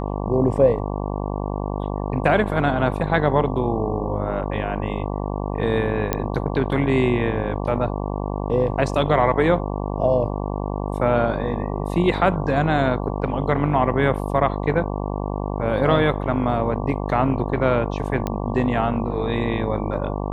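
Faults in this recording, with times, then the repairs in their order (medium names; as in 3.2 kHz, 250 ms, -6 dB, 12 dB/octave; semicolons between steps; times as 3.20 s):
buzz 50 Hz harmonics 23 -26 dBFS
6.13 s: pop -6 dBFS
18.27 s: pop -12 dBFS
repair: de-click; de-hum 50 Hz, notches 23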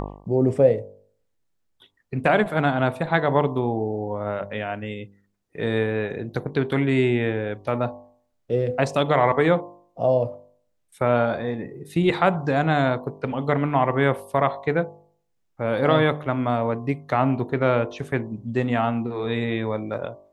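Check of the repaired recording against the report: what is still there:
nothing left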